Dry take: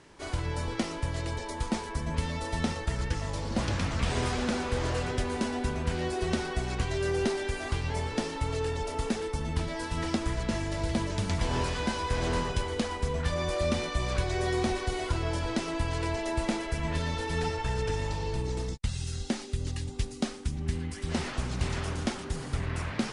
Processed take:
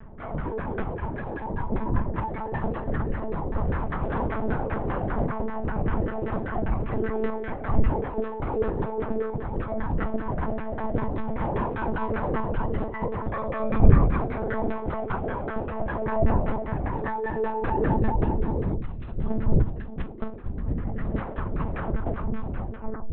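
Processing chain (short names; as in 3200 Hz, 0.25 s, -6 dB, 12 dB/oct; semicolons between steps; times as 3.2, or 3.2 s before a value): tape stop at the end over 1.12 s; wind noise 95 Hz -29 dBFS; on a send: flutter echo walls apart 5.4 m, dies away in 0.3 s; on the sum: LFO low-pass saw down 5.1 Hz 410–1700 Hz; monotone LPC vocoder at 8 kHz 220 Hz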